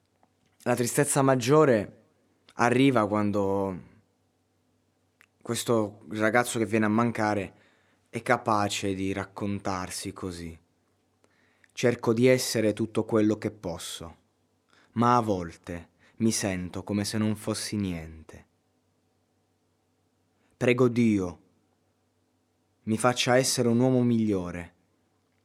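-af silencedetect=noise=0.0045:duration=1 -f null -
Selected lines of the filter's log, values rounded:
silence_start: 3.94
silence_end: 5.21 | silence_duration: 1.27
silence_start: 18.41
silence_end: 20.61 | silence_duration: 2.20
silence_start: 21.36
silence_end: 22.87 | silence_duration: 1.51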